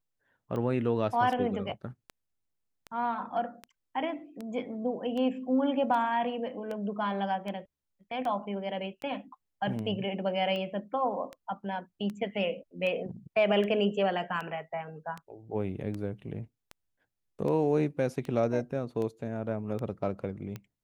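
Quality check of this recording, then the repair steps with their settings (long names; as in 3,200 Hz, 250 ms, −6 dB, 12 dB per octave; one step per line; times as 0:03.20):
scratch tick 78 rpm −25 dBFS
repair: click removal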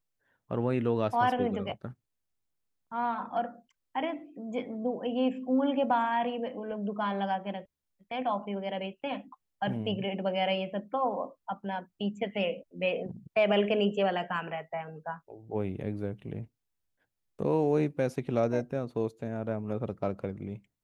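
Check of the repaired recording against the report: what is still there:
none of them is left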